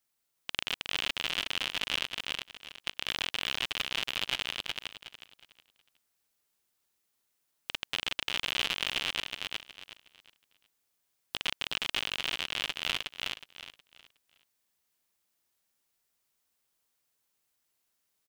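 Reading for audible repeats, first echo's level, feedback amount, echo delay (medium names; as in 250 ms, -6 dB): 3, -3.0 dB, 27%, 366 ms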